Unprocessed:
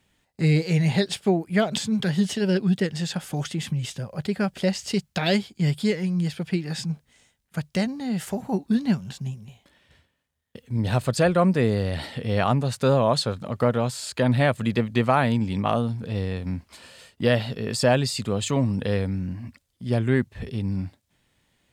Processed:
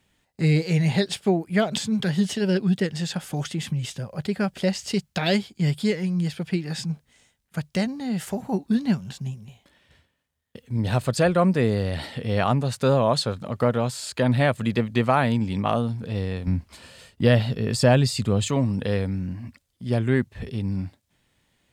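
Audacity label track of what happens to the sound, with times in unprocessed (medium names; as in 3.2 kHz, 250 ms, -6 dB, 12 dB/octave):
16.470000	18.470000	bass shelf 180 Hz +9 dB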